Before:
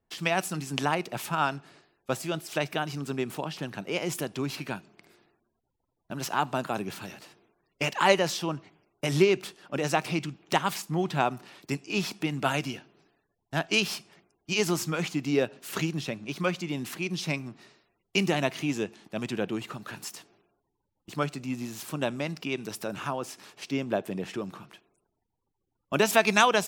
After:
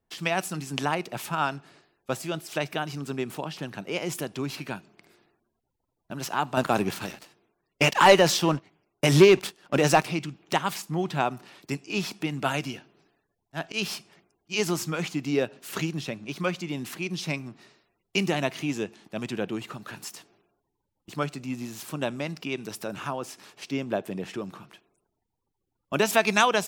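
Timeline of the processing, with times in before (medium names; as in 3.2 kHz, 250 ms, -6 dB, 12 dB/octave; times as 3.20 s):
6.57–10.05 s: waveshaping leveller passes 2
12.55–14.54 s: slow attack 107 ms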